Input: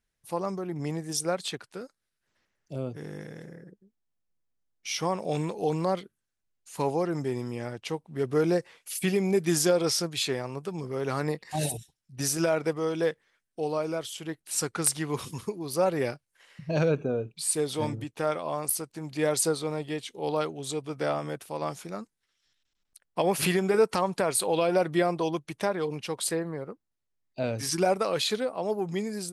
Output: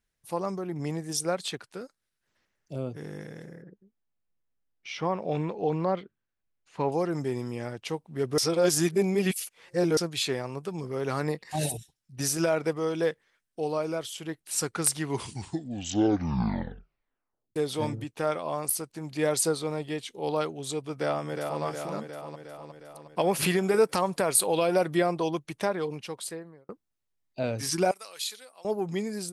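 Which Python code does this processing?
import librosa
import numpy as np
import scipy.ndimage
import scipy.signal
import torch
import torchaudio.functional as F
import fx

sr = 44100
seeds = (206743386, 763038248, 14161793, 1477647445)

y = fx.lowpass(x, sr, hz=2800.0, slope=12, at=(3.62, 6.92))
y = fx.echo_throw(y, sr, start_s=20.95, length_s=0.68, ms=360, feedback_pct=65, wet_db=-5.0)
y = fx.high_shelf(y, sr, hz=9900.0, db=10.5, at=(23.63, 24.97))
y = fx.differentiator(y, sr, at=(27.91, 28.65))
y = fx.edit(y, sr, fx.reverse_span(start_s=8.38, length_s=1.59),
    fx.tape_stop(start_s=14.99, length_s=2.57),
    fx.fade_out_span(start_s=25.73, length_s=0.96), tone=tone)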